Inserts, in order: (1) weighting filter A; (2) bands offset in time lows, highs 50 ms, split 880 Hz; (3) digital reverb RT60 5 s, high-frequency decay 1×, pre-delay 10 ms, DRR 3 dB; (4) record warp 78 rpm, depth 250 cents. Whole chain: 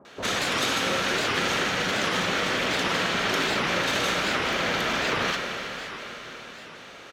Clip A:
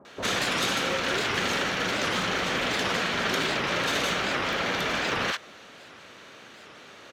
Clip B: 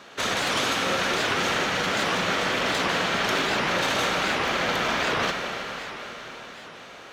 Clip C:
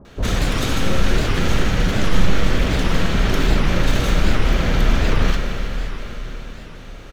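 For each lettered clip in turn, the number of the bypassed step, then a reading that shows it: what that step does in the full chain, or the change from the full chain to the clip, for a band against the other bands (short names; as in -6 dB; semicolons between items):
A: 3, momentary loudness spread change -13 LU; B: 2, 1 kHz band +2.0 dB; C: 1, 125 Hz band +17.0 dB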